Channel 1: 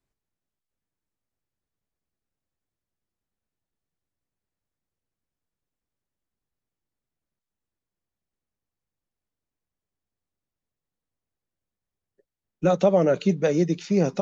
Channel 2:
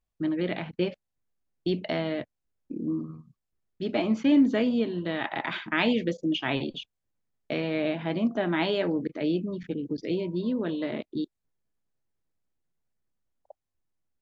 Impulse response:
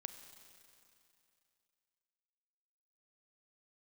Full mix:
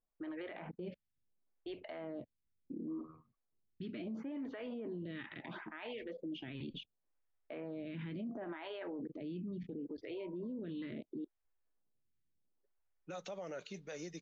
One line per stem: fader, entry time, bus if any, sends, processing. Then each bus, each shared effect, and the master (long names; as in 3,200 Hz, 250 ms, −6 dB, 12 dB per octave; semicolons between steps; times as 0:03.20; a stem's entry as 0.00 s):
−18.0 dB, 0.45 s, no send, low-pass that shuts in the quiet parts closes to 890 Hz, open at −17.5 dBFS; tilt shelving filter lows −8.5 dB, about 670 Hz
−1.5 dB, 0.00 s, no send, low-pass filter 2,700 Hz 12 dB per octave; phaser with staggered stages 0.72 Hz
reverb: not used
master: brickwall limiter −36.5 dBFS, peak gain reduction 21 dB